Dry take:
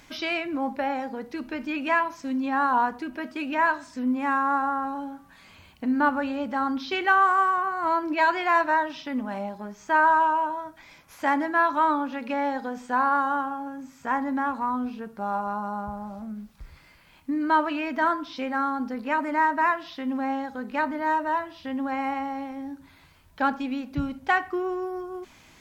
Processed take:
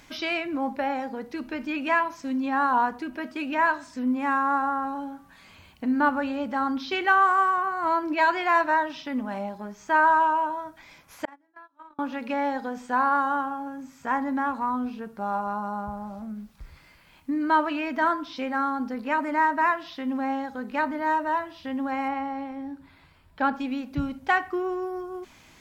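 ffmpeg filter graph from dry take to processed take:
-filter_complex "[0:a]asettb=1/sr,asplit=3[a][b][c];[a]atrim=end=11.254[d];[b]atrim=start=11.25:end=11.99,asetpts=PTS-STARTPTS,afade=t=in:d=0.004:c=qsin,afade=t=out:st=0.736:d=0.004:c=qsin,asplit=2[e][f];[f]adelay=32,volume=-10dB[g];[e][g]amix=inputs=2:normalize=0,atrim=end_sample=32634,agate=range=-41dB:threshold=-19dB:ratio=16:release=100:detection=peak,acompressor=threshold=-43dB:ratio=10:attack=3.2:release=140:knee=1:detection=peak[h];[c]atrim=start=11.986[i];[d][h]acrossfade=d=0.004:c1=hsin:c2=qsin[j];[j][i]acrossfade=d=0.004:c1=qsin:c2=hsin,asettb=1/sr,asplit=3[k][l][m];[k]atrim=end=22.084[n];[l]atrim=start=22.08:end=23.55,asetpts=PTS-STARTPTS,afade=t=in:d=0.004:c=qsin,afade=t=out:st=1.466:d=0.004:c=qsin,highshelf=f=5.8k:g=-10,bandreject=f=6.2k:w=6.7[o];[m]atrim=start=23.546[p];[n][o]acrossfade=d=0.004:c1=hsin:c2=qsin[q];[q][p]acrossfade=d=0.004:c1=qsin:c2=hsin"

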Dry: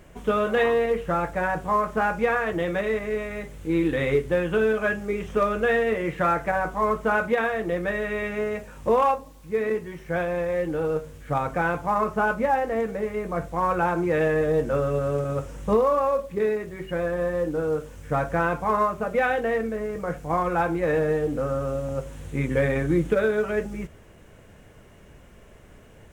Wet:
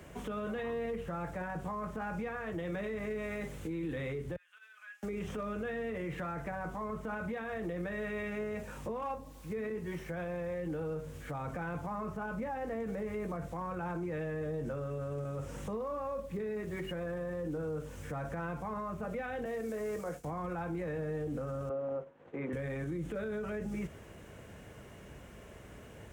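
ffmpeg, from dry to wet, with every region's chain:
-filter_complex "[0:a]asettb=1/sr,asplit=3[a][b][c];[a]atrim=end=4.364[d];[b]atrim=start=4.36:end=5.03,asetpts=PTS-STARTPTS,afade=t=in:d=0.004:c=qsin,afade=t=out:st=0.666:d=0.004:c=qsin,agate=range=-17dB:threshold=-19dB:ratio=16:release=100:detection=peak,acompressor=threshold=-42dB:ratio=3:attack=3.2:release=140:knee=1:detection=peak,highpass=f=1.4k:w=0.5412,highpass=f=1.4k:w=1.3066[e];[c]atrim=start=5.026[f];[d][e]acrossfade=d=0.004:c1=hsin:c2=qsin[g];[g][f]acrossfade=d=0.004:c1=qsin:c2=hsin,asettb=1/sr,asplit=3[h][i][j];[h]atrim=end=19.454[k];[i]atrim=start=19.45:end=20.24,asetpts=PTS-STARTPTS,afade=t=in:d=0.004:c=qsin,afade=t=out:st=0.786:d=0.004:c=qsin,agate=range=-33dB:threshold=-33dB:ratio=3:release=100:detection=peak,bass=f=250:g=-8,treble=f=4k:g=8,acrossover=split=220|820|3000[l][m][n][o];[l]acompressor=threshold=-44dB:ratio=3[p];[m]acompressor=threshold=-32dB:ratio=3[q];[n]acompressor=threshold=-46dB:ratio=3[r];[o]acompressor=threshold=-53dB:ratio=3[s];[p][q][r][s]amix=inputs=4:normalize=0[t];[j]atrim=start=20.236[u];[k][t]acrossfade=d=0.004:c1=hsin:c2=qsin[v];[v][u]acrossfade=d=0.004:c1=qsin:c2=hsin,asettb=1/sr,asplit=3[w][x][y];[w]atrim=end=21.694[z];[x]atrim=start=21.69:end=22.53,asetpts=PTS-STARTPTS,afade=t=in:d=0.004:c=qsin,afade=t=out:st=0.836:d=0.004:c=qsin,agate=range=-33dB:threshold=-30dB:ratio=3:release=100:detection=peak,highpass=500,lowpass=2.6k,tiltshelf=f=1.5k:g=8[aa];[y]atrim=start=22.526[ab];[z][aa]acrossfade=d=0.004:c1=hsin:c2=qsin[ac];[ac][ab]acrossfade=d=0.004:c1=qsin:c2=hsin,highpass=52,acrossover=split=83|210[ad][ae][af];[ad]acompressor=threshold=-50dB:ratio=4[ag];[ae]acompressor=threshold=-35dB:ratio=4[ah];[af]acompressor=threshold=-34dB:ratio=4[ai];[ag][ah][ai]amix=inputs=3:normalize=0,alimiter=level_in=6.5dB:limit=-24dB:level=0:latency=1:release=27,volume=-6.5dB"

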